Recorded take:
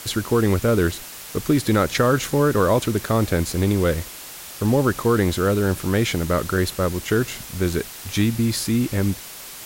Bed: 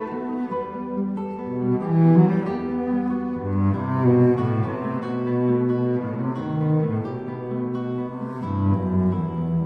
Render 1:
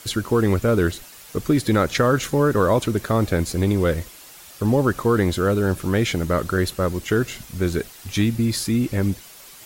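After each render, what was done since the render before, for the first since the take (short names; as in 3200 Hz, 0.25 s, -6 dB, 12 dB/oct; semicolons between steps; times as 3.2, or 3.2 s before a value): denoiser 8 dB, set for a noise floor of -38 dBFS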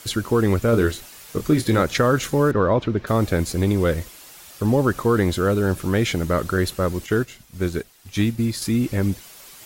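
0.7–1.82 doubler 26 ms -8 dB; 2.51–3.07 air absorption 240 m; 7.06–8.62 upward expander, over -38 dBFS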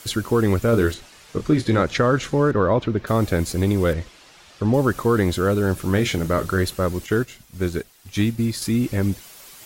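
0.94–2.52 air absorption 67 m; 3.93–4.74 LPF 4800 Hz; 5.85–6.63 doubler 31 ms -10.5 dB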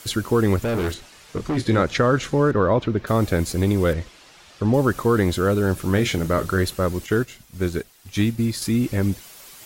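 0.56–1.57 hard clip -20.5 dBFS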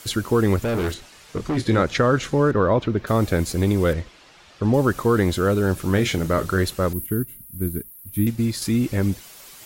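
4.01–4.63 high shelf 7200 Hz -10 dB; 6.93–8.27 EQ curve 290 Hz 0 dB, 550 Hz -15 dB, 1800 Hz -14 dB, 6700 Hz -21 dB, 11000 Hz +15 dB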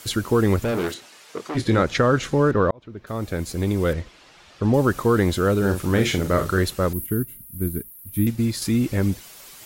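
0.71–1.54 HPF 130 Hz -> 480 Hz; 2.71–4.63 fade in equal-power; 5.57–6.59 doubler 45 ms -8 dB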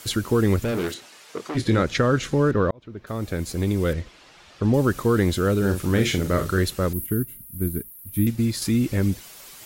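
dynamic EQ 860 Hz, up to -5 dB, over -33 dBFS, Q 0.92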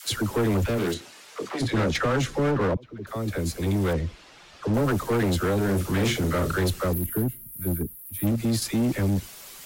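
dispersion lows, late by 66 ms, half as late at 540 Hz; hard clip -20 dBFS, distortion -10 dB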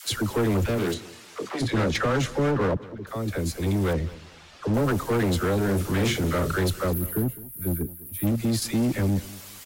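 feedback echo 0.206 s, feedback 29%, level -19 dB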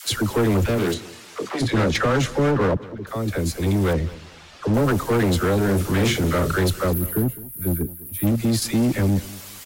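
gain +4 dB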